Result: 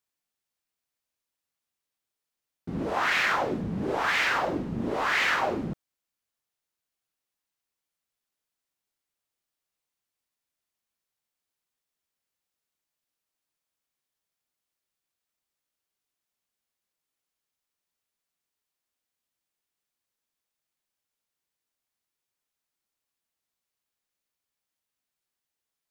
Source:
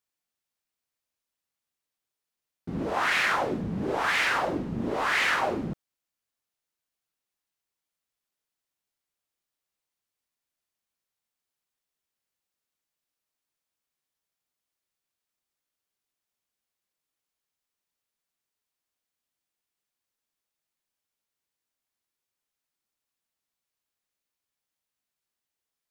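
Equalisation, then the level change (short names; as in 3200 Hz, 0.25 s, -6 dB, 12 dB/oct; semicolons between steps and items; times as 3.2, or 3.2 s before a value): dynamic EQ 9600 Hz, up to -7 dB, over -57 dBFS, Q 2.3; 0.0 dB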